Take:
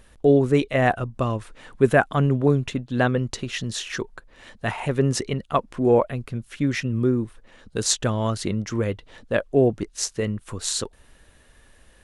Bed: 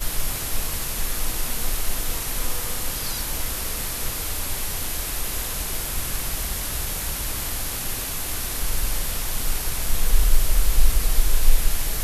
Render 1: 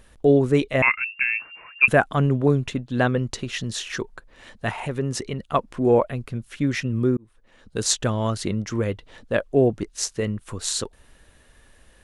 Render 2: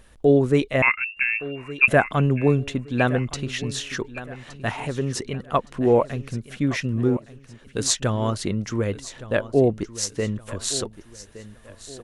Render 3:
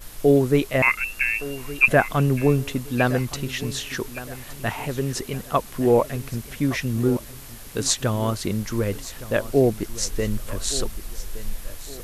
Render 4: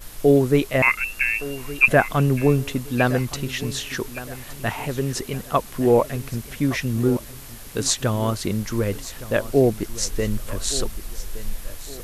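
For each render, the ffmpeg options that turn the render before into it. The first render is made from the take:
ffmpeg -i in.wav -filter_complex "[0:a]asettb=1/sr,asplit=3[link_01][link_02][link_03];[link_01]atrim=end=0.824[link_04];[link_02]atrim=start=0.82:end=1.88,asetpts=PTS-STARTPTS,afade=type=in:duration=0.004:curve=qsin,afade=type=out:start_time=1.056:duration=0.004:curve=qsin,lowpass=frequency=2400:width_type=q:width=0.5098,lowpass=frequency=2400:width_type=q:width=0.6013,lowpass=frequency=2400:width_type=q:width=0.9,lowpass=frequency=2400:width_type=q:width=2.563,afreqshift=-2800[link_05];[link_03]atrim=start=1.876[link_06];[link_04][link_05]acrossfade=duration=0.004:curve1=hsin:curve2=qsin[link_07];[link_07][link_06]acrossfade=duration=0.004:curve1=qsin:curve2=hsin,asettb=1/sr,asplit=3[link_08][link_09][link_10];[link_08]atrim=end=4.694[link_11];[link_09]atrim=start=4.69:end=5.39,asetpts=PTS-STARTPTS,afade=type=in:duration=0.004:curve=qsin,afade=type=out:start_time=0.696:duration=0.004:curve=qsin,acompressor=threshold=-29dB:ratio=1.5:attack=3.2:release=140:knee=1:detection=peak[link_12];[link_10]atrim=start=5.386[link_13];[link_11][link_12]acrossfade=duration=0.004:curve1=hsin:curve2=qsin[link_14];[link_14][link_13]acrossfade=duration=0.004:curve1=qsin:curve2=hsin,asplit=2[link_15][link_16];[link_15]atrim=end=7.17,asetpts=PTS-STARTPTS,afade=type=out:start_time=7.166:duration=0.004:curve=hsin[link_17];[link_16]atrim=start=7.17,asetpts=PTS-STARTPTS,afade=type=in:duration=0.65[link_18];[link_17][link_18]concat=n=2:v=0:a=1" out.wav
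ffmpeg -i in.wav -af "aecho=1:1:1167|2334|3501:0.158|0.0571|0.0205" out.wav
ffmpeg -i in.wav -i bed.wav -filter_complex "[1:a]volume=-14dB[link_01];[0:a][link_01]amix=inputs=2:normalize=0" out.wav
ffmpeg -i in.wav -af "volume=1dB,alimiter=limit=-2dB:level=0:latency=1" out.wav

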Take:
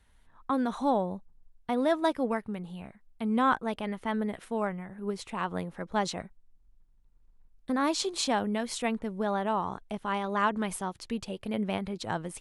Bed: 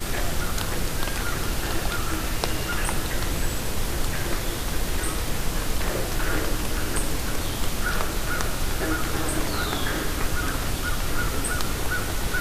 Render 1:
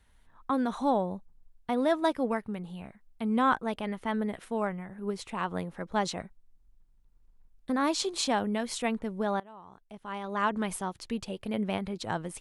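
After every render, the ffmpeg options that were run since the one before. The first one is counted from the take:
ffmpeg -i in.wav -filter_complex "[0:a]asplit=2[link_01][link_02];[link_01]atrim=end=9.4,asetpts=PTS-STARTPTS,afade=type=out:start_time=9.396:duration=0.004:curve=hsin:silence=0.0841395[link_03];[link_02]atrim=start=9.4,asetpts=PTS-STARTPTS,afade=type=in:duration=1.14:curve=qua:silence=0.0841395[link_04];[link_03][link_04]concat=n=2:v=0:a=1" out.wav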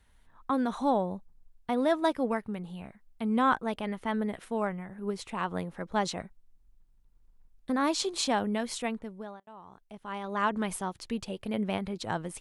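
ffmpeg -i in.wav -filter_complex "[0:a]asplit=2[link_01][link_02];[link_01]atrim=end=9.47,asetpts=PTS-STARTPTS,afade=type=out:start_time=8.65:duration=0.82[link_03];[link_02]atrim=start=9.47,asetpts=PTS-STARTPTS,afade=type=in:duration=0.004:curve=hsin[link_04];[link_03][link_04]concat=n=2:v=0:a=1" out.wav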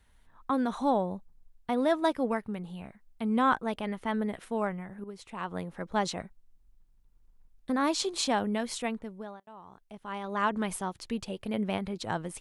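ffmpeg -i in.wav -filter_complex "[0:a]asplit=2[link_01][link_02];[link_01]atrim=end=5.04,asetpts=PTS-STARTPTS,afade=type=out:start_time=5.036:duration=0.004:curve=hsin:silence=0.251189[link_03];[link_02]atrim=start=5.04,asetpts=PTS-STARTPTS,afade=type=in:duration=0.77:silence=0.251189[link_04];[link_03][link_04]concat=n=2:v=0:a=1" out.wav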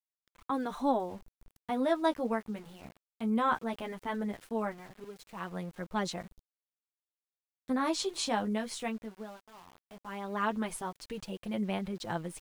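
ffmpeg -i in.wav -af "flanger=delay=5.5:depth=8.6:regen=-17:speed=0.17:shape=sinusoidal,aeval=exprs='val(0)*gte(abs(val(0)),0.00266)':channel_layout=same" out.wav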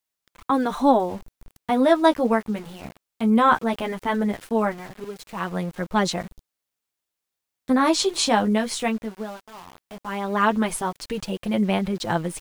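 ffmpeg -i in.wav -af "volume=11.5dB" out.wav

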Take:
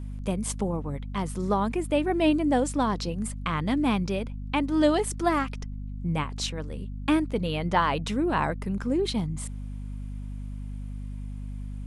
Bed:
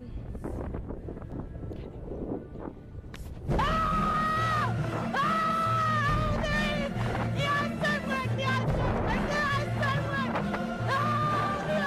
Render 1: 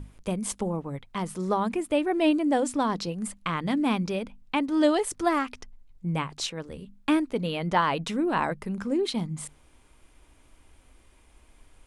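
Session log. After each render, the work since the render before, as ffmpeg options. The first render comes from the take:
ffmpeg -i in.wav -af "bandreject=frequency=50:width_type=h:width=6,bandreject=frequency=100:width_type=h:width=6,bandreject=frequency=150:width_type=h:width=6,bandreject=frequency=200:width_type=h:width=6,bandreject=frequency=250:width_type=h:width=6" out.wav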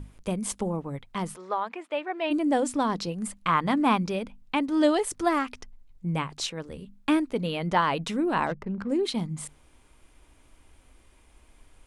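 ffmpeg -i in.wav -filter_complex "[0:a]asplit=3[link_01][link_02][link_03];[link_01]afade=type=out:start_time=1.35:duration=0.02[link_04];[link_02]highpass=650,lowpass=3200,afade=type=in:start_time=1.35:duration=0.02,afade=type=out:start_time=2.3:duration=0.02[link_05];[link_03]afade=type=in:start_time=2.3:duration=0.02[link_06];[link_04][link_05][link_06]amix=inputs=3:normalize=0,asettb=1/sr,asplit=3[link_07][link_08][link_09];[link_07]atrim=end=3.484[link_10];[link_08]atrim=start=3.48:end=3.98,asetpts=PTS-STARTPTS,afade=type=in:duration=0.004:curve=qsin,afade=type=out:start_time=0.496:duration=0.004:curve=qsin,equalizer=frequency=1100:width_type=o:width=1.3:gain=9.5[link_11];[link_09]atrim=start=3.976[link_12];[link_10][link_11]acrossfade=duration=0.004:curve1=hsin:curve2=qsin[link_13];[link_13][link_12]acrossfade=duration=0.004:curve1=qsin:curve2=hsin,asplit=3[link_14][link_15][link_16];[link_14]afade=type=out:start_time=8.46:duration=0.02[link_17];[link_15]adynamicsmooth=sensitivity=4.5:basefreq=980,afade=type=in:start_time=8.46:duration=0.02,afade=type=out:start_time=8.88:duration=0.02[link_18];[link_16]afade=type=in:start_time=8.88:duration=0.02[link_19];[link_17][link_18][link_19]amix=inputs=3:normalize=0" out.wav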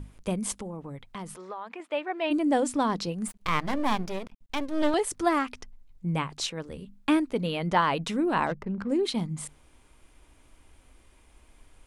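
ffmpeg -i in.wav -filter_complex "[0:a]asettb=1/sr,asplit=3[link_01][link_02][link_03];[link_01]atrim=end=0.564[link_04];[link_02]atrim=start=0.56:end=1.8,asetpts=PTS-STARTPTS,afade=type=in:duration=0.004:curve=qsin,afade=type=out:start_time=1.236:duration=0.004:curve=qsin,acompressor=threshold=-36dB:ratio=3:attack=3.2:release=140:knee=1:detection=peak[link_05];[link_03]atrim=start=1.796[link_06];[link_04][link_05]acrossfade=duration=0.004:curve1=hsin:curve2=qsin[link_07];[link_07][link_06]acrossfade=duration=0.004:curve1=qsin:curve2=hsin,asettb=1/sr,asplit=3[link_08][link_09][link_10];[link_08]atrim=end=3.284[link_11];[link_09]atrim=start=3.28:end=4.94,asetpts=PTS-STARTPTS,afade=type=in:duration=0.004:curve=qsin,afade=type=out:start_time=1.656:duration=0.004:curve=qsin,aeval=exprs='max(val(0),0)':channel_layout=same[link_12];[link_10]atrim=start=4.936[link_13];[link_11][link_12]acrossfade=duration=0.004:curve1=hsin:curve2=qsin[link_14];[link_14][link_13]acrossfade=duration=0.004:curve1=qsin:curve2=hsin" out.wav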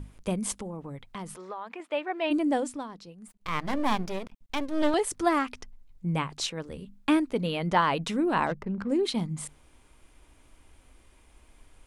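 ffmpeg -i in.wav -filter_complex "[0:a]asplit=3[link_01][link_02][link_03];[link_01]atrim=end=2.88,asetpts=PTS-STARTPTS,afade=type=out:start_time=2.4:duration=0.48:silence=0.16788[link_04];[link_02]atrim=start=2.88:end=3.28,asetpts=PTS-STARTPTS,volume=-15.5dB[link_05];[link_03]atrim=start=3.28,asetpts=PTS-STARTPTS,afade=type=in:duration=0.48:silence=0.16788[link_06];[link_04][link_05][link_06]concat=n=3:v=0:a=1" out.wav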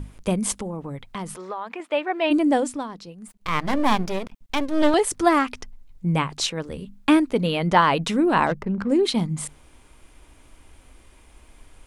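ffmpeg -i in.wav -af "volume=6.5dB" out.wav

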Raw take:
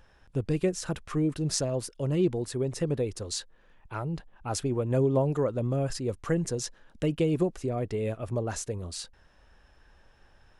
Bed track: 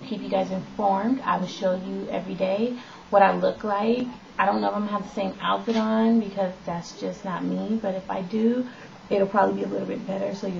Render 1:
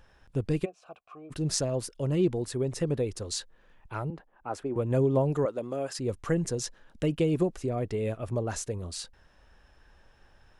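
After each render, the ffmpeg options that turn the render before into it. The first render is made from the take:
ffmpeg -i in.wav -filter_complex "[0:a]asplit=3[link_01][link_02][link_03];[link_01]afade=type=out:start_time=0.64:duration=0.02[link_04];[link_02]asplit=3[link_05][link_06][link_07];[link_05]bandpass=frequency=730:width_type=q:width=8,volume=0dB[link_08];[link_06]bandpass=frequency=1090:width_type=q:width=8,volume=-6dB[link_09];[link_07]bandpass=frequency=2440:width_type=q:width=8,volume=-9dB[link_10];[link_08][link_09][link_10]amix=inputs=3:normalize=0,afade=type=in:start_time=0.64:duration=0.02,afade=type=out:start_time=1.3:duration=0.02[link_11];[link_03]afade=type=in:start_time=1.3:duration=0.02[link_12];[link_04][link_11][link_12]amix=inputs=3:normalize=0,asettb=1/sr,asplit=3[link_13][link_14][link_15];[link_13]atrim=end=4.104[link_16];[link_14]atrim=start=4.1:end=4.76,asetpts=PTS-STARTPTS,afade=type=in:duration=0.004:curve=qsin,afade=type=out:start_time=0.656:duration=0.004:curve=qsin,acrossover=split=250 2000:gain=0.2 1 0.178[link_17][link_18][link_19];[link_17][link_18][link_19]amix=inputs=3:normalize=0[link_20];[link_15]atrim=start=4.756[link_21];[link_16][link_20]acrossfade=duration=0.004:curve1=hsin:curve2=qsin[link_22];[link_22][link_21]acrossfade=duration=0.004:curve1=qsin:curve2=hsin,asettb=1/sr,asplit=3[link_23][link_24][link_25];[link_23]atrim=end=5.454[link_26];[link_24]atrim=start=5.45:end=5.99,asetpts=PTS-STARTPTS,afade=type=in:duration=0.004:curve=qsin,afade=type=out:start_time=0.536:duration=0.004:curve=qsin,highpass=330[link_27];[link_25]atrim=start=5.986[link_28];[link_26][link_27]acrossfade=duration=0.004:curve1=hsin:curve2=qsin[link_29];[link_29][link_28]acrossfade=duration=0.004:curve1=qsin:curve2=hsin" out.wav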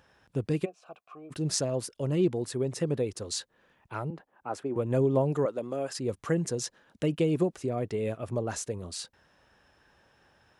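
ffmpeg -i in.wav -af "highpass=110" out.wav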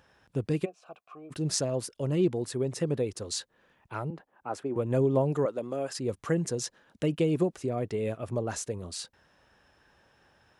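ffmpeg -i in.wav -af anull out.wav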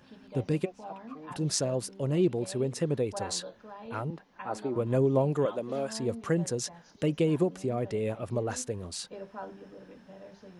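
ffmpeg -i in.wav -i bed.wav -filter_complex "[1:a]volume=-21dB[link_01];[0:a][link_01]amix=inputs=2:normalize=0" out.wav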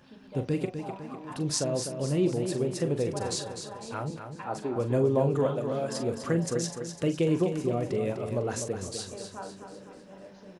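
ffmpeg -i in.wav -filter_complex "[0:a]asplit=2[link_01][link_02];[link_02]adelay=42,volume=-10dB[link_03];[link_01][link_03]amix=inputs=2:normalize=0,aecho=1:1:251|502|753|1004|1255|1506:0.398|0.191|0.0917|0.044|0.0211|0.0101" out.wav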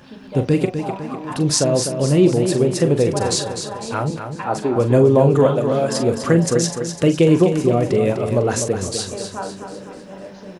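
ffmpeg -i in.wav -af "volume=12dB,alimiter=limit=-2dB:level=0:latency=1" out.wav

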